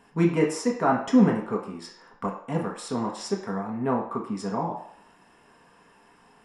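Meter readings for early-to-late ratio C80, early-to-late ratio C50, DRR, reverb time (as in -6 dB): 9.5 dB, 7.0 dB, -2.0 dB, 0.60 s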